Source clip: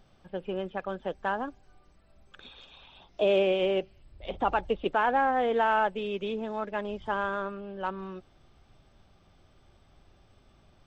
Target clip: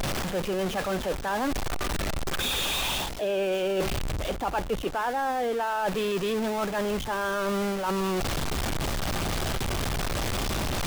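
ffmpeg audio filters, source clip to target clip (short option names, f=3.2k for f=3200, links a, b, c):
-af "aeval=exprs='val(0)+0.5*0.0376*sgn(val(0))':c=same,areverse,acompressor=threshold=-32dB:ratio=6,areverse,volume=6.5dB"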